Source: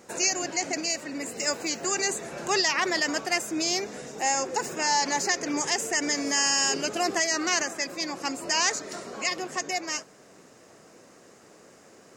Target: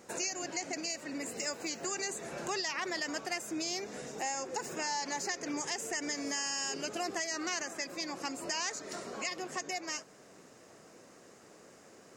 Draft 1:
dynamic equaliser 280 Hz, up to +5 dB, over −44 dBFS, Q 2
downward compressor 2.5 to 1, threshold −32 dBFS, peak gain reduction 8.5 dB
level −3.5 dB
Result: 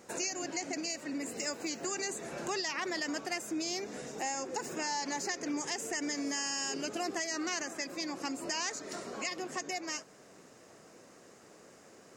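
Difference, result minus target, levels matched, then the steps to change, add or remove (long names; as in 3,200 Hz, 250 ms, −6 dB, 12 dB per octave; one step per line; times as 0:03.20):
250 Hz band +2.5 dB
change: dynamic equaliser 100 Hz, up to +5 dB, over −44 dBFS, Q 2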